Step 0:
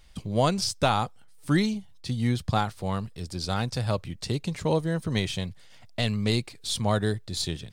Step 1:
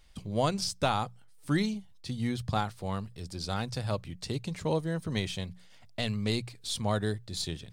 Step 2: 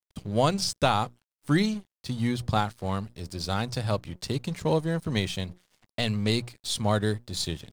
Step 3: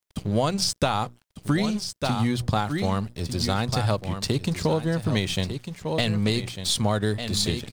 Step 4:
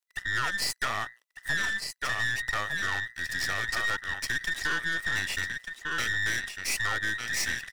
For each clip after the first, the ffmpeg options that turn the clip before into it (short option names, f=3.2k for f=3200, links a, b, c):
-af "bandreject=f=60:t=h:w=6,bandreject=f=120:t=h:w=6,bandreject=f=180:t=h:w=6,volume=-4.5dB"
-af "aeval=exprs='sgn(val(0))*max(abs(val(0))-0.00282,0)':c=same,volume=5dB"
-af "aecho=1:1:1199:0.282,acompressor=threshold=-27dB:ratio=6,volume=7.5dB"
-af "afftfilt=real='real(if(between(b,1,1012),(2*floor((b-1)/92)+1)*92-b,b),0)':imag='imag(if(between(b,1,1012),(2*floor((b-1)/92)+1)*92-b,b),0)*if(between(b,1,1012),-1,1)':win_size=2048:overlap=0.75,highpass=f=820:p=1,aeval=exprs='(tanh(15.8*val(0)+0.7)-tanh(0.7))/15.8':c=same"